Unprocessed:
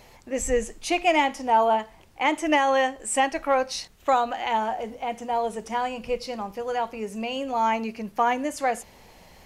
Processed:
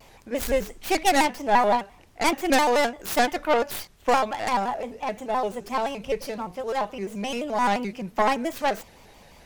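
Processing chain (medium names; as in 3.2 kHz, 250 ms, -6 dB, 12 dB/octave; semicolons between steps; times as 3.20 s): tracing distortion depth 0.39 ms; vibrato with a chosen wave square 5.8 Hz, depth 160 cents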